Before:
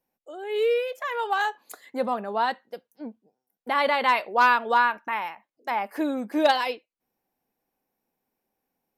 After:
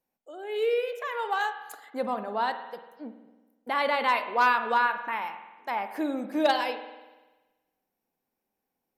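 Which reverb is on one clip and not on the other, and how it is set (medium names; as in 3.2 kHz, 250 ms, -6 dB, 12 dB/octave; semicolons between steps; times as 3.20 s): spring tank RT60 1.2 s, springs 48 ms, chirp 70 ms, DRR 9 dB; trim -3.5 dB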